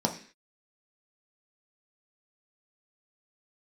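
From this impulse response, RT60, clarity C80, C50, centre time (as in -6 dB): 0.45 s, 15.5 dB, 11.0 dB, 13 ms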